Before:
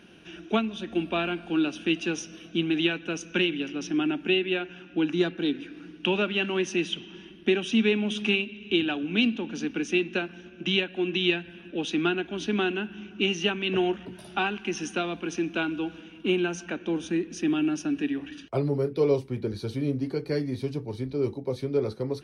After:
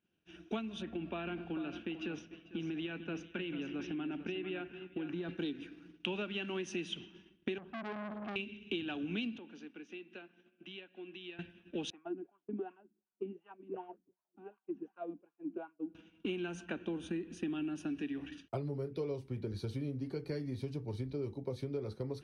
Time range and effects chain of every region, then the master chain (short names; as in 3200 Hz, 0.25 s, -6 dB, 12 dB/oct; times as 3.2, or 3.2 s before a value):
0.82–5.29 compressor 4:1, threshold -32 dBFS + LPF 2700 Hz + echo 0.447 s -9.5 dB
7.58–8.36 LPF 1400 Hz 24 dB/oct + compressor 2.5:1, threshold -29 dBFS + core saturation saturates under 1500 Hz
9.38–11.39 BPF 250–4000 Hz + compressor 5:1, threshold -39 dBFS
11.9–15.95 LPF 2500 Hz + wah 2.7 Hz 260–1100 Hz, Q 5.8
16.52–17.87 bell 5600 Hz -9.5 dB 0.55 oct + notch 2200 Hz, Q 11
whole clip: expander -35 dBFS; bell 89 Hz +6 dB 1.5 oct; compressor 6:1, threshold -33 dBFS; gain -2.5 dB